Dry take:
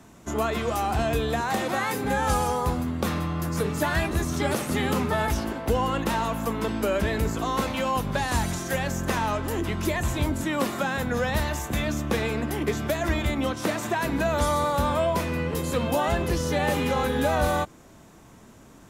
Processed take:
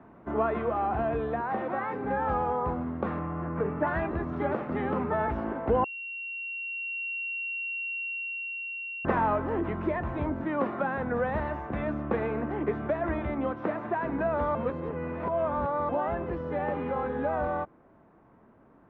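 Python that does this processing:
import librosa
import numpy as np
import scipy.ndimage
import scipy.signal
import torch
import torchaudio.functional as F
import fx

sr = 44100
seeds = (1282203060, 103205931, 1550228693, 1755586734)

y = fx.lowpass(x, sr, hz=2900.0, slope=24, at=(3.19, 3.87))
y = fx.edit(y, sr, fx.bleep(start_s=5.84, length_s=3.21, hz=2740.0, db=-22.0),
    fx.reverse_span(start_s=14.55, length_s=1.34), tone=tone)
y = scipy.signal.sosfilt(scipy.signal.bessel(4, 1200.0, 'lowpass', norm='mag', fs=sr, output='sos'), y)
y = fx.low_shelf(y, sr, hz=200.0, db=-10.5)
y = fx.rider(y, sr, range_db=10, speed_s=2.0)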